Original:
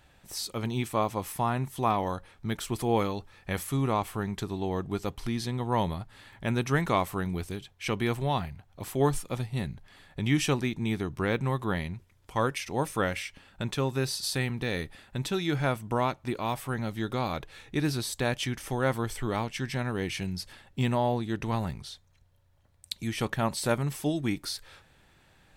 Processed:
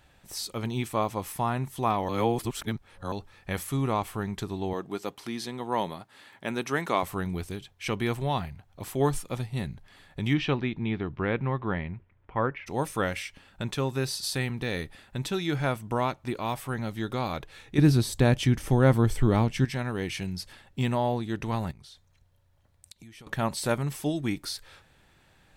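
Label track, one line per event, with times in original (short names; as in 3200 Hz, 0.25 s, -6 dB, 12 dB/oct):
2.090000	3.120000	reverse
4.730000	7.030000	HPF 240 Hz
10.330000	12.660000	LPF 4000 Hz -> 2100 Hz 24 dB/oct
17.780000	19.650000	low shelf 430 Hz +12 dB
21.710000	23.270000	compressor 8:1, threshold -46 dBFS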